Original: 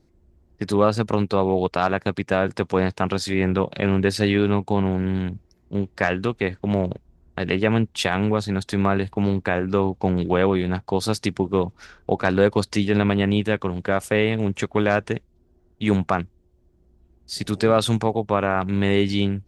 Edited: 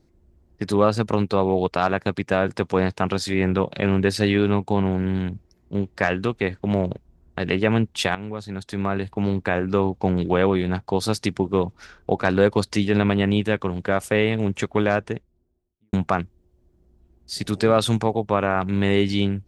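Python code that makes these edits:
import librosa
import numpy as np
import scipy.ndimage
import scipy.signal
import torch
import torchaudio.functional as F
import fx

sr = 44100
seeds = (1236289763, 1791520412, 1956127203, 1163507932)

y = fx.studio_fade_out(x, sr, start_s=14.71, length_s=1.22)
y = fx.edit(y, sr, fx.fade_in_from(start_s=8.15, length_s=1.39, floor_db=-14.0), tone=tone)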